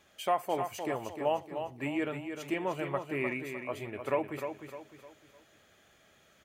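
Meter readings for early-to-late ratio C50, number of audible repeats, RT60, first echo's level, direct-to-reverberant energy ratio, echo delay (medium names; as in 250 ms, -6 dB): no reverb, 4, no reverb, -7.5 dB, no reverb, 304 ms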